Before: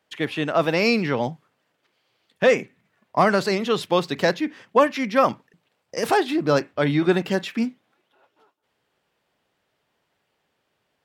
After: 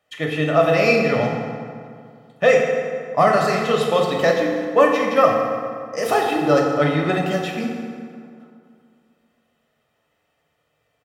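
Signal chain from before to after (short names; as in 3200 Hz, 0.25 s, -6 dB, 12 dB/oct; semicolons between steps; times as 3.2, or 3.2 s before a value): bell 4600 Hz -4.5 dB 0.51 oct; comb 1.6 ms, depth 57%; FDN reverb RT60 2.2 s, low-frequency decay 1.1×, high-frequency decay 0.6×, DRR -1 dB; gain -1 dB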